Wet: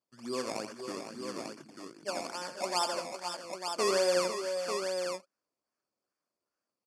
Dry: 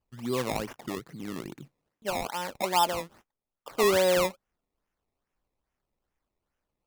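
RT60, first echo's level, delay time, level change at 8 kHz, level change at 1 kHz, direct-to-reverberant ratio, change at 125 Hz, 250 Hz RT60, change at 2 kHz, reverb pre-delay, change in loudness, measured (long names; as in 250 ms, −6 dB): no reverb audible, −9.0 dB, 83 ms, −1.0 dB, −5.5 dB, no reverb audible, −12.0 dB, no reverb audible, −5.0 dB, no reverb audible, −5.0 dB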